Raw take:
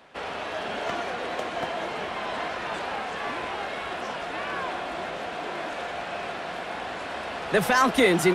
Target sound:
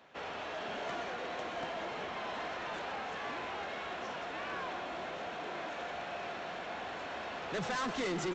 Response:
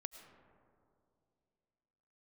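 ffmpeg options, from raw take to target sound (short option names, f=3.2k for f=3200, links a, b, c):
-af "highpass=53,bandreject=f=4.8k:w=20,aresample=16000,asoftclip=type=tanh:threshold=-25.5dB,aresample=44100,aecho=1:1:126:0.237,volume=-7dB"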